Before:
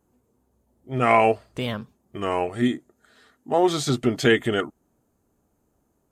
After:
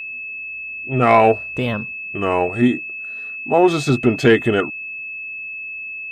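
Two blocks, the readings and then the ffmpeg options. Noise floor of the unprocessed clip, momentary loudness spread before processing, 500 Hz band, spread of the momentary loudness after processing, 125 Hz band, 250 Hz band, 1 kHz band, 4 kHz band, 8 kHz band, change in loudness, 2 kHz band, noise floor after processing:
-70 dBFS, 15 LU, +6.0 dB, 13 LU, +6.5 dB, +6.5 dB, +5.0 dB, +0.5 dB, -1.5 dB, +3.5 dB, +7.0 dB, -31 dBFS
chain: -filter_complex "[0:a]highshelf=f=2.6k:g=-9.5,asplit=2[a][b];[b]acontrast=80,volume=3dB[c];[a][c]amix=inputs=2:normalize=0,aeval=exprs='val(0)+0.0794*sin(2*PI*2600*n/s)':c=same,volume=-5.5dB"

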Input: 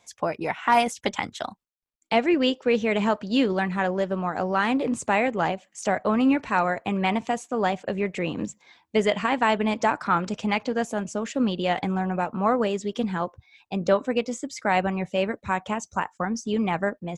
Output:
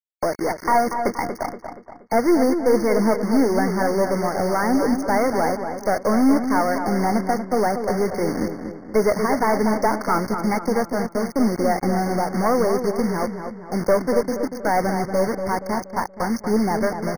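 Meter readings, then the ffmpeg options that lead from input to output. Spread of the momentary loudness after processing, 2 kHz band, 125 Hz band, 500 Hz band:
7 LU, -0.5 dB, +3.5 dB, +5.0 dB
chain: -filter_complex "[0:a]equalizer=f=390:w=0.42:g=8,aeval=exprs='(tanh(3.55*val(0)+0.35)-tanh(0.35))/3.55':c=same,acrusher=bits=4:mix=0:aa=0.000001,asplit=2[a][b];[b]adelay=237,lowpass=f=3k:p=1,volume=-7.5dB,asplit=2[c][d];[d]adelay=237,lowpass=f=3k:p=1,volume=0.48,asplit=2[e][f];[f]adelay=237,lowpass=f=3k:p=1,volume=0.48,asplit=2[g][h];[h]adelay=237,lowpass=f=3k:p=1,volume=0.48,asplit=2[i][j];[j]adelay=237,lowpass=f=3k:p=1,volume=0.48,asplit=2[k][l];[l]adelay=237,lowpass=f=3k:p=1,volume=0.48[m];[a][c][e][g][i][k][m]amix=inputs=7:normalize=0,afftfilt=real='re*eq(mod(floor(b*sr/1024/2200),2),0)':imag='im*eq(mod(floor(b*sr/1024/2200),2),0)':win_size=1024:overlap=0.75"

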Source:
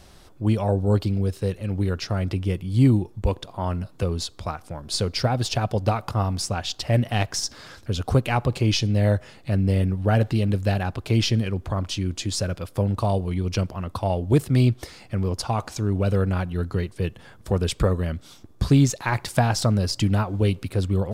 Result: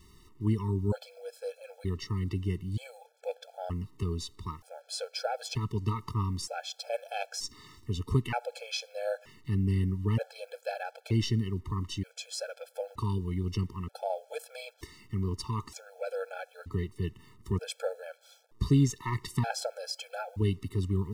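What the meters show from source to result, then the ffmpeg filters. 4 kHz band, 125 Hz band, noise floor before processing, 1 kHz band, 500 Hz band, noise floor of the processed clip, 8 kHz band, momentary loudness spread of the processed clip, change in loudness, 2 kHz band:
-9.5 dB, -10.0 dB, -49 dBFS, -9.5 dB, -9.5 dB, -62 dBFS, -10.0 dB, 12 LU, -10.0 dB, -10.0 dB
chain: -af "acrusher=bits=8:mix=0:aa=0.5,afftfilt=real='re*gt(sin(2*PI*0.54*pts/sr)*(1-2*mod(floor(b*sr/1024/440),2)),0)':imag='im*gt(sin(2*PI*0.54*pts/sr)*(1-2*mod(floor(b*sr/1024/440),2)),0)':win_size=1024:overlap=0.75,volume=-6.5dB"

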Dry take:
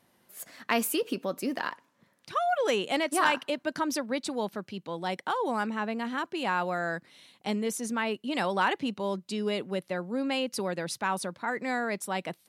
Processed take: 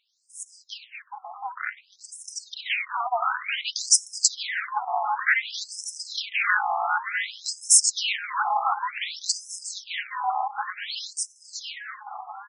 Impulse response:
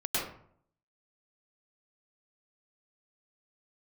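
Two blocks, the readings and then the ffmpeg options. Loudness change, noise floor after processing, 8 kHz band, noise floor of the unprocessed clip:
+5.5 dB, -58 dBFS, +16.0 dB, -69 dBFS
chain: -filter_complex "[0:a]afftfilt=real='real(if(between(b,1,1008),(2*floor((b-1)/48)+1)*48-b,b),0)':imag='imag(if(between(b,1,1008),(2*floor((b-1)/48)+1)*48-b,b),0)*if(between(b,1,1008),-1,1)':win_size=2048:overlap=0.75,asoftclip=type=tanh:threshold=-25.5dB,dynaudnorm=f=300:g=17:m=15dB,asplit=2[a][b];[b]aecho=0:1:647|1294|1941|2588|3235|3882|4529:0.398|0.219|0.12|0.0662|0.0364|0.02|0.011[c];[a][c]amix=inputs=2:normalize=0,tremolo=f=230:d=0.824,acontrast=28,equalizer=f=125:t=o:w=1:g=-4,equalizer=f=500:t=o:w=1:g=-6,equalizer=f=8k:t=o:w=1:g=9,afftfilt=real='re*between(b*sr/1024,920*pow(7400/920,0.5+0.5*sin(2*PI*0.55*pts/sr))/1.41,920*pow(7400/920,0.5+0.5*sin(2*PI*0.55*pts/sr))*1.41)':imag='im*between(b*sr/1024,920*pow(7400/920,0.5+0.5*sin(2*PI*0.55*pts/sr))/1.41,920*pow(7400/920,0.5+0.5*sin(2*PI*0.55*pts/sr))*1.41)':win_size=1024:overlap=0.75"

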